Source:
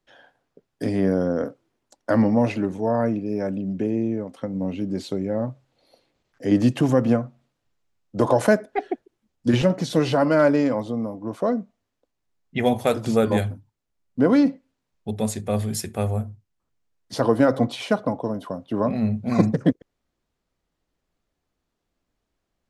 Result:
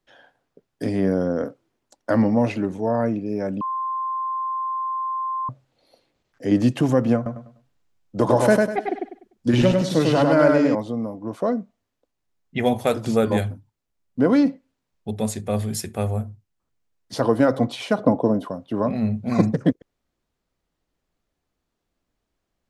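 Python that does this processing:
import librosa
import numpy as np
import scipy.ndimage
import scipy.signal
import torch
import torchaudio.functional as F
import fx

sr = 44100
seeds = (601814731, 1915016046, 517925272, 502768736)

y = fx.echo_feedback(x, sr, ms=99, feedback_pct=30, wet_db=-3, at=(7.16, 10.75))
y = fx.peak_eq(y, sr, hz=300.0, db=8.5, octaves=3.0, at=(17.98, 18.48))
y = fx.edit(y, sr, fx.bleep(start_s=3.61, length_s=1.88, hz=1050.0, db=-23.0), tone=tone)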